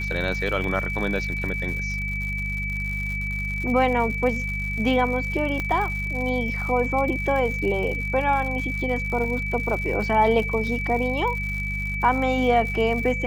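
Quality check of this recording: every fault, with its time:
surface crackle 130 per second −31 dBFS
mains hum 50 Hz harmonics 4 −30 dBFS
whistle 2,300 Hz −28 dBFS
0:00.64: drop-out 2.2 ms
0:05.60: click −14 dBFS

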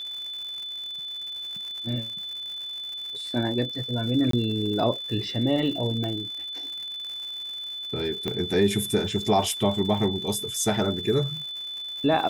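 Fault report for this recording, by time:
surface crackle 180 per second −35 dBFS
whistle 3,500 Hz −32 dBFS
0:04.31–0:04.33: drop-out 23 ms
0:06.04: click −19 dBFS
0:08.28: click −15 dBFS

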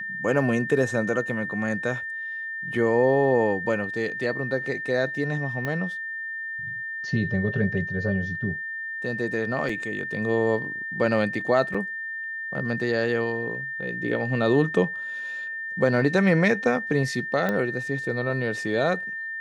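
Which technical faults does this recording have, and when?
whistle 1,800 Hz −30 dBFS
0:05.65: click −16 dBFS
0:09.69: drop-out 4.2 ms
0:11.74–0:11.75: drop-out 5.2 ms
0:17.49: click −14 dBFS

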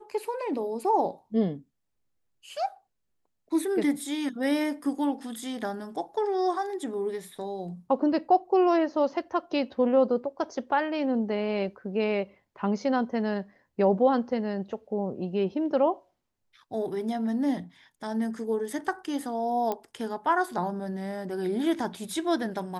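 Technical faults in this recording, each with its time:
0:19.72: click −17 dBFS

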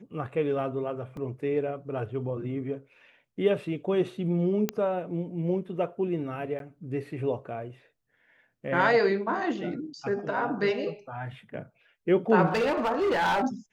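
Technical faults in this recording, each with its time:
0:01.17: drop-out 2 ms
0:04.69: click −12 dBFS
0:06.59–0:06.60: drop-out
0:12.46–0:13.44: clipping −22 dBFS

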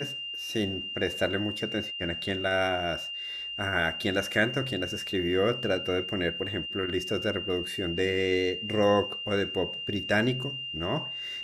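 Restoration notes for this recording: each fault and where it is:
whistle 2,800 Hz −34 dBFS

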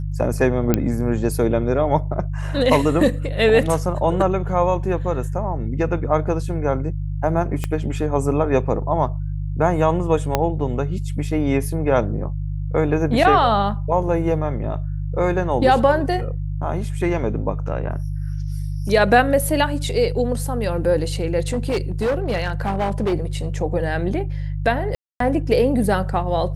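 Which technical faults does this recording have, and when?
mains hum 50 Hz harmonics 3 −25 dBFS
0:00.74: click −4 dBFS
0:07.64: click −10 dBFS
0:10.35: click −3 dBFS
0:21.48–0:23.14: clipping −16.5 dBFS
0:24.95–0:25.20: drop-out 253 ms

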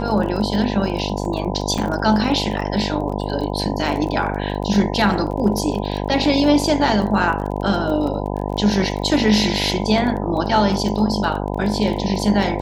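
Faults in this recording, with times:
mains buzz 50 Hz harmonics 20 −24 dBFS
surface crackle 24 per second −27 dBFS
0:01.78: drop-out 4.7 ms

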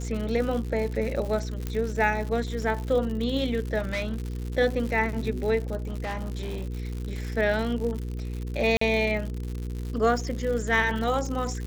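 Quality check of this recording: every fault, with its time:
surface crackle 140 per second −32 dBFS
mains hum 60 Hz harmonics 8 −32 dBFS
0:01.67: click −16 dBFS
0:03.79–0:04.28: clipping −24.5 dBFS
0:05.76–0:07.00: clipping −27.5 dBFS
0:08.77–0:08.81: drop-out 44 ms

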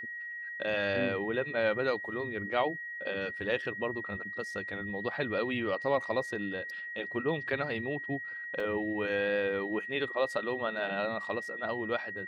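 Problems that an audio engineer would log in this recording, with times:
whistle 1,900 Hz −38 dBFS
0:08.60: drop-out 3 ms

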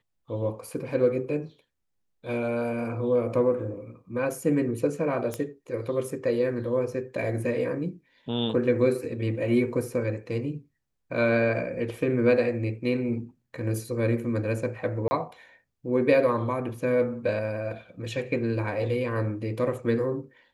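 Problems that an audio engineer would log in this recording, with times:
0:05.34: click −17 dBFS
0:15.08–0:15.11: drop-out 30 ms

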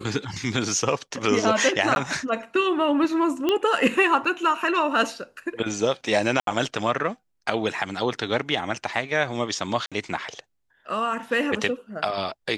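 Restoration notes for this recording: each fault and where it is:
0:01.95–0:01.96: drop-out 11 ms
0:03.49: click −10 dBFS
0:06.40–0:06.47: drop-out 72 ms
0:09.86–0:09.92: drop-out 56 ms

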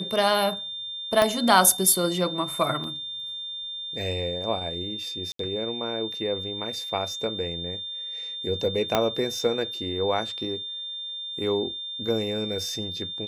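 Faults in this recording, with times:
whistle 3,600 Hz −32 dBFS
0:01.22: click −8 dBFS
0:02.84: drop-out 2.2 ms
0:05.32–0:05.39: drop-out 73 ms
0:08.95: click −7 dBFS

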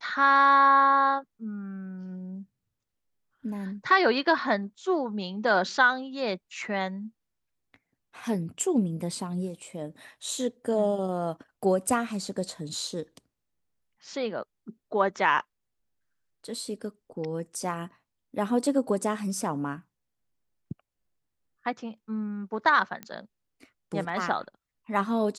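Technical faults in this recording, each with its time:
0:23.03: click −22 dBFS

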